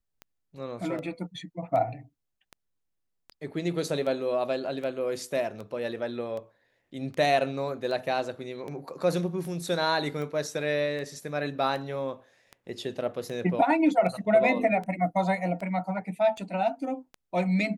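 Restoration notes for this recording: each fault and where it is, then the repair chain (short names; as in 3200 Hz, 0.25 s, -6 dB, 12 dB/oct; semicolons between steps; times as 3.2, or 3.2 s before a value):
tick 78 rpm -26 dBFS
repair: de-click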